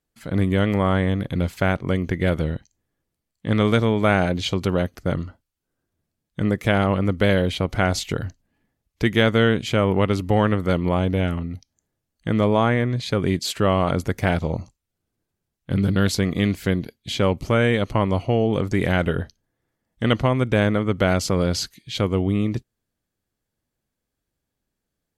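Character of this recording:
background noise floor −82 dBFS
spectral slope −5.5 dB per octave

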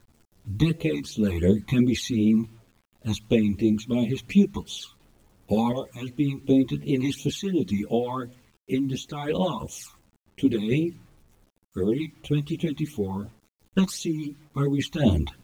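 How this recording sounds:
sample-and-hold tremolo 1.4 Hz
phaser sweep stages 12, 2.8 Hz, lowest notch 490–1,700 Hz
a quantiser's noise floor 10 bits, dither none
a shimmering, thickened sound

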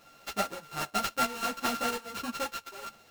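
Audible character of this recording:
a buzz of ramps at a fixed pitch in blocks of 32 samples
chopped level 1.4 Hz, depth 65%, duty 75%
aliases and images of a low sample rate 9,600 Hz, jitter 20%
a shimmering, thickened sound

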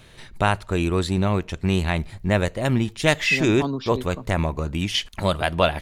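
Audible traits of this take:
background noise floor −47 dBFS
spectral slope −4.5 dB per octave

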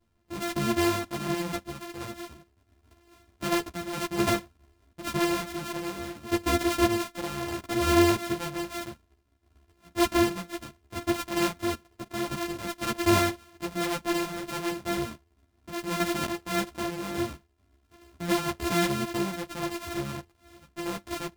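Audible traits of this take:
a buzz of ramps at a fixed pitch in blocks of 128 samples
sample-and-hold tremolo
a shimmering, thickened sound

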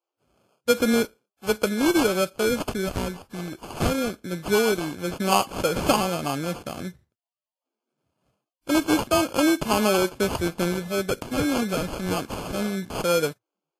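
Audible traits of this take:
phaser sweep stages 6, 0.23 Hz, lowest notch 720–3,000 Hz
aliases and images of a low sample rate 1,900 Hz, jitter 0%
Ogg Vorbis

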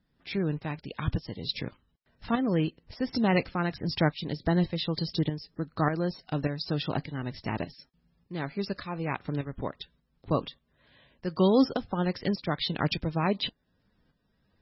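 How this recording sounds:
tremolo saw up 1.7 Hz, depth 60%
MP3

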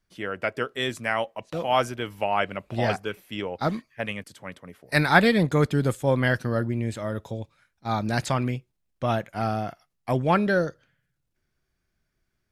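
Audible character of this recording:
background noise floor −77 dBFS
spectral slope −4.5 dB per octave

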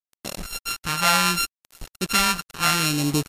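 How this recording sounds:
a buzz of ramps at a fixed pitch in blocks of 32 samples
phaser sweep stages 2, 0.71 Hz, lowest notch 320–1,500 Hz
a quantiser's noise floor 6 bits, dither none
MP3

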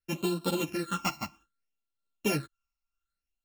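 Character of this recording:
a buzz of ramps at a fixed pitch in blocks of 32 samples
phaser sweep stages 8, 0.63 Hz, lowest notch 470–2,000 Hz
tremolo triangle 2 Hz, depth 50%
a shimmering, thickened sound

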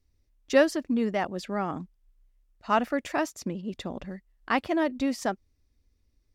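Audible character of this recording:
background noise floor −71 dBFS
spectral slope −4.0 dB per octave

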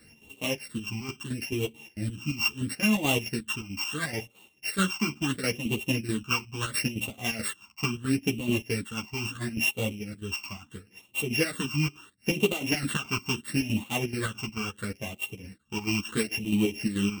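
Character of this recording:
a buzz of ramps at a fixed pitch in blocks of 16 samples
phaser sweep stages 8, 0.74 Hz, lowest notch 500–1,600 Hz
chopped level 4.6 Hz, depth 60%, duty 60%
a shimmering, thickened sound

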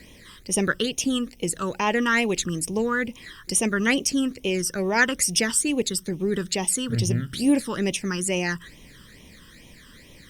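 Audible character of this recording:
a quantiser's noise floor 10 bits, dither none
phaser sweep stages 12, 2.3 Hz, lowest notch 710–1,500 Hz
Opus

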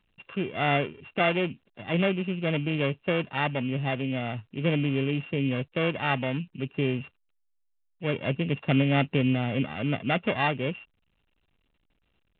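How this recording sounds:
a buzz of ramps at a fixed pitch in blocks of 16 samples
A-law companding

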